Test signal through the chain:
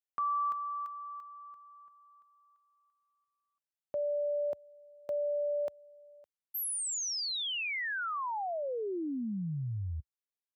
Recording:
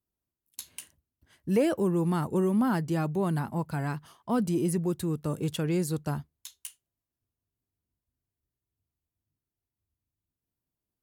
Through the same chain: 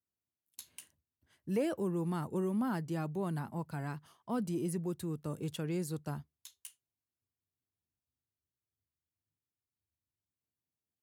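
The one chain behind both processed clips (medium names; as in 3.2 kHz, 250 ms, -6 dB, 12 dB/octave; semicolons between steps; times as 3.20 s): high-pass 68 Hz 24 dB/octave; trim -8 dB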